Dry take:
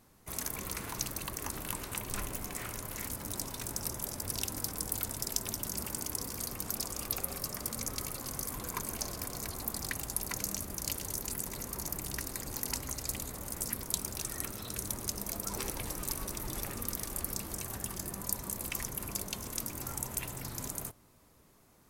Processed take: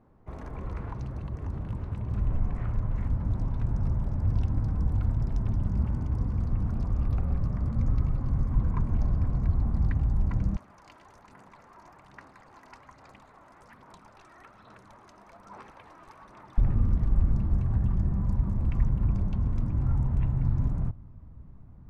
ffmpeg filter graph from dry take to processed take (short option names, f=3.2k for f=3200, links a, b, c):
-filter_complex "[0:a]asettb=1/sr,asplit=3[a][b][c];[a]atrim=end=0.934[d];[b]atrim=start=0.93:end=2.27,asetpts=PTS-STARTPTS,afade=t=in:d=0.004:c=qsin,afade=t=out:st=1.336:d=0.004:c=qsin,highpass=56,acrossover=split=500|3000[e][f][g];[f]acompressor=threshold=-48dB:ratio=6:attack=3.2:release=140:knee=2.83:detection=peak[h];[e][h][g]amix=inputs=3:normalize=0[i];[c]atrim=start=2.266[j];[d][i]acrossfade=d=0.004:c1=hsin:c2=qsin[k];[k][j]acrossfade=d=0.004:c1=qsin:c2=hsin,asettb=1/sr,asplit=3[l][m][n];[l]atrim=end=10.564[o];[m]atrim=start=10.56:end=16.58,asetpts=PTS-STARTPTS,afade=t=in:d=0.004:c=qsin,afade=t=out:st=6.016:d=0.004:c=qsin,highpass=880,aphaser=in_gain=1:out_gain=1:delay=3.1:decay=0.35:speed=1.2:type=sinusoidal[p];[n]atrim=start=16.576[q];[o][p]acrossfade=d=0.004:c1=hsin:c2=qsin[r];[r][q]acrossfade=d=0.004:c1=qsin:c2=hsin,lowpass=1k,asubboost=boost=11:cutoff=130,volume=4dB"